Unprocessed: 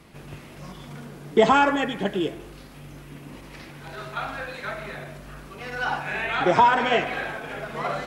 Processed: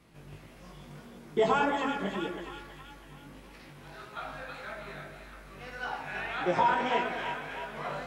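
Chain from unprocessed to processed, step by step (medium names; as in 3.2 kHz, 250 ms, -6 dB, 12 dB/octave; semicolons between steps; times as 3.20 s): two-band feedback delay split 860 Hz, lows 106 ms, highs 323 ms, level -6 dB; chorus 1.7 Hz, delay 16.5 ms, depth 4.5 ms; trim -6.5 dB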